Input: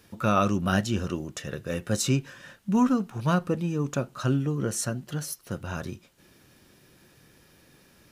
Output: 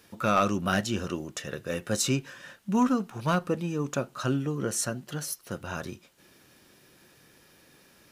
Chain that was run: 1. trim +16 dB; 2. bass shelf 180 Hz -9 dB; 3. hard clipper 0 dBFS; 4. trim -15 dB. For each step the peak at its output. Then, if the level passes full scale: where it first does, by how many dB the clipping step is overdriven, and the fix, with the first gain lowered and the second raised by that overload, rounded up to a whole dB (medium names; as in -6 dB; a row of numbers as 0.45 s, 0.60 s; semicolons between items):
+6.5 dBFS, +6.0 dBFS, 0.0 dBFS, -15.0 dBFS; step 1, 6.0 dB; step 1 +10 dB, step 4 -9 dB